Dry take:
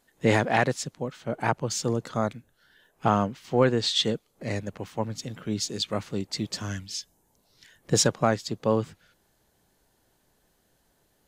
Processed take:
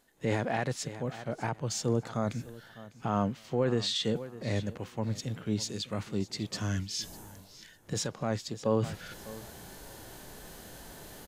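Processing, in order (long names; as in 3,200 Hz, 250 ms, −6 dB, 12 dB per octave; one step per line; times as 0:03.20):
reversed playback
upward compression, threshold −25 dBFS
reversed playback
repeating echo 601 ms, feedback 20%, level −20 dB
brickwall limiter −17 dBFS, peak gain reduction 8 dB
harmonic and percussive parts rebalanced percussive −7 dB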